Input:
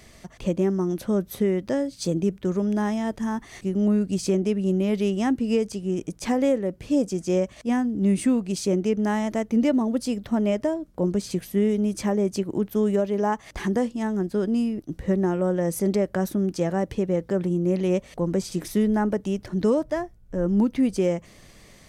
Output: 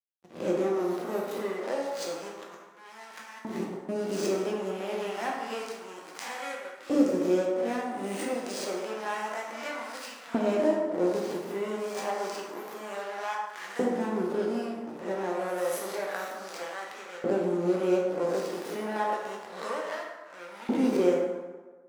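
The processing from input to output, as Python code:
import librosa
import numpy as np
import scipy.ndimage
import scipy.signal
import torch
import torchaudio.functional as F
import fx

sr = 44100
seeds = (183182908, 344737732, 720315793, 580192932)

y = fx.spec_swells(x, sr, rise_s=0.64)
y = fx.over_compress(y, sr, threshold_db=-28.0, ratio=-0.5, at=(2.42, 3.89))
y = fx.backlash(y, sr, play_db=-24.0)
y = fx.rev_plate(y, sr, seeds[0], rt60_s=1.4, hf_ratio=0.55, predelay_ms=0, drr_db=-2.0)
y = fx.filter_lfo_highpass(y, sr, shape='saw_up', hz=0.29, low_hz=270.0, high_hz=1600.0, q=0.92)
y = F.gain(torch.from_numpy(y), -4.5).numpy()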